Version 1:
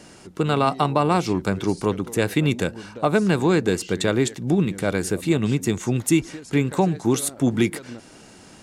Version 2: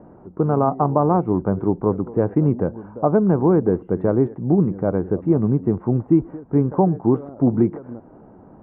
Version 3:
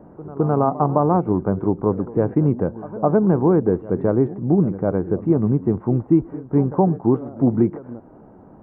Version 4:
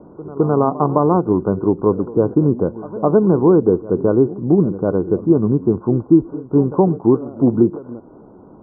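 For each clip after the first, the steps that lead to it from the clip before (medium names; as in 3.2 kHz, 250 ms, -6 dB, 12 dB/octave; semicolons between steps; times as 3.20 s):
inverse Chebyshev low-pass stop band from 4.5 kHz, stop band 70 dB; trim +3 dB
pre-echo 211 ms -17.5 dB
rippled Chebyshev low-pass 1.5 kHz, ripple 6 dB; trim +5.5 dB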